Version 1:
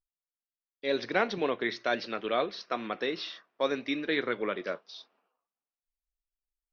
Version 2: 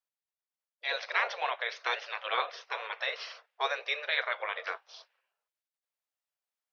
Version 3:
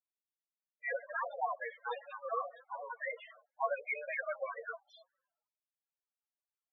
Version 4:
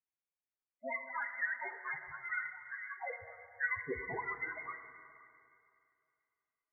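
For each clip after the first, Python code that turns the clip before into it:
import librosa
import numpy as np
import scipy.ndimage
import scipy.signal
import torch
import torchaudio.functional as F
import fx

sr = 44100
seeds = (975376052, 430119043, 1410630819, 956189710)

y1 = fx.spec_gate(x, sr, threshold_db=-10, keep='weak')
y1 = scipy.signal.sosfilt(scipy.signal.butter(8, 470.0, 'highpass', fs=sr, output='sos'), y1)
y1 = fx.high_shelf(y1, sr, hz=3400.0, db=-8.0)
y1 = y1 * librosa.db_to_amplitude(7.0)
y2 = fx.halfwave_hold(y1, sr)
y2 = fx.spec_topn(y2, sr, count=4)
y2 = y2 * librosa.db_to_amplitude(-1.5)
y3 = fx.freq_invert(y2, sr, carrier_hz=2600)
y3 = y3 + 10.0 ** (-22.5 / 20.0) * np.pad(y3, (int(527 * sr / 1000.0), 0))[:len(y3)]
y3 = fx.rev_plate(y3, sr, seeds[0], rt60_s=2.5, hf_ratio=1.0, predelay_ms=0, drr_db=7.0)
y3 = y3 * librosa.db_to_amplitude(-2.0)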